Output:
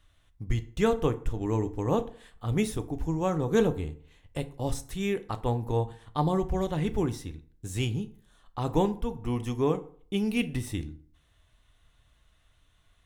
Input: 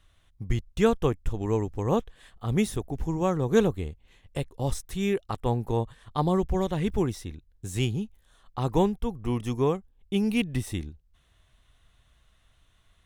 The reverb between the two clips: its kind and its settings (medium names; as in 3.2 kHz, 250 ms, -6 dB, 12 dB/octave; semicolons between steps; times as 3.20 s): FDN reverb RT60 0.5 s, low-frequency decay 1×, high-frequency decay 0.65×, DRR 9 dB; trim -2 dB